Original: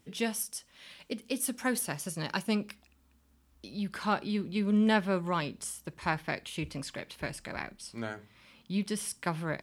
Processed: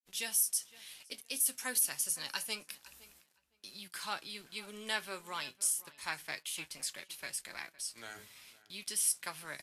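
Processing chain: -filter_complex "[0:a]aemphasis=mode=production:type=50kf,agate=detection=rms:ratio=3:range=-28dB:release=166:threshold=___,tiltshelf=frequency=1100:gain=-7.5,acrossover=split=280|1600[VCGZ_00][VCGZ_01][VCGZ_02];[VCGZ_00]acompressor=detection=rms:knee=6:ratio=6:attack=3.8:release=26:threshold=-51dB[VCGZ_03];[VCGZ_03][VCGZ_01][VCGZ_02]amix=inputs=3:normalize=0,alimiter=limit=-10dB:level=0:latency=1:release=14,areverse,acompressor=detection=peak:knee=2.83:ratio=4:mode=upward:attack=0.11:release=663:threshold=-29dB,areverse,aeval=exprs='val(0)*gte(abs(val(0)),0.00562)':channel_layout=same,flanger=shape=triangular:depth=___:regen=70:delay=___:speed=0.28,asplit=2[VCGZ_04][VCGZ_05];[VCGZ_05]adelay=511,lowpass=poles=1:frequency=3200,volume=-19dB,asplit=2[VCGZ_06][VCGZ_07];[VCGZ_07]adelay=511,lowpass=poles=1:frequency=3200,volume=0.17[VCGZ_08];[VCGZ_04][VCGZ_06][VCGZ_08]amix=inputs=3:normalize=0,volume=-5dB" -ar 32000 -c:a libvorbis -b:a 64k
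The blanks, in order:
-58dB, 3, 5.1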